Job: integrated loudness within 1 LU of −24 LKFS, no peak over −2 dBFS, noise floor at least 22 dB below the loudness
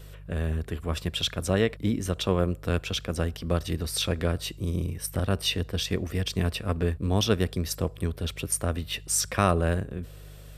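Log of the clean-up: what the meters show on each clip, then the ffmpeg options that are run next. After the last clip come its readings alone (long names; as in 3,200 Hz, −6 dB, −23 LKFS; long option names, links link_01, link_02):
mains hum 50 Hz; hum harmonics up to 150 Hz; level of the hum −43 dBFS; integrated loudness −28.0 LKFS; sample peak −7.0 dBFS; target loudness −24.0 LKFS
→ -af "bandreject=frequency=50:width_type=h:width=4,bandreject=frequency=100:width_type=h:width=4,bandreject=frequency=150:width_type=h:width=4"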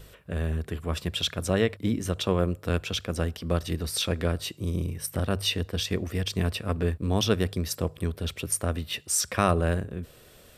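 mains hum none found; integrated loudness −28.5 LKFS; sample peak −7.5 dBFS; target loudness −24.0 LKFS
→ -af "volume=4.5dB"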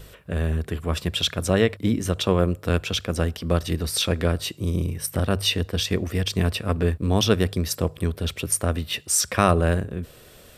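integrated loudness −24.0 LKFS; sample peak −3.0 dBFS; background noise floor −49 dBFS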